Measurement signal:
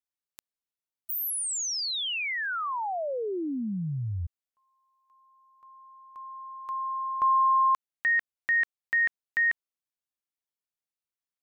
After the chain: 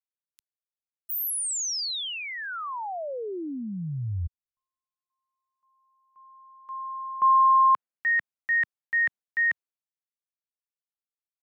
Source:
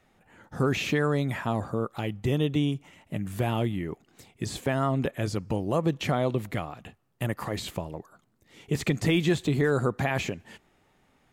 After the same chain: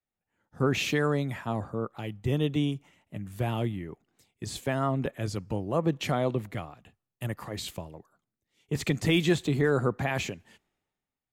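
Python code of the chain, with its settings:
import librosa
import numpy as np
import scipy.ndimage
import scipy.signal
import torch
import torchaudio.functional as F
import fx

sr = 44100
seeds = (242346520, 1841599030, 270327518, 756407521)

y = fx.band_widen(x, sr, depth_pct=70)
y = y * 10.0 ** (-2.0 / 20.0)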